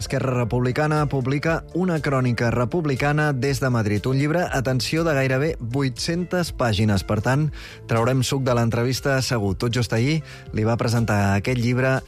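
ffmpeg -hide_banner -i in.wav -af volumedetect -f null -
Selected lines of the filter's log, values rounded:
mean_volume: -21.2 dB
max_volume: -10.8 dB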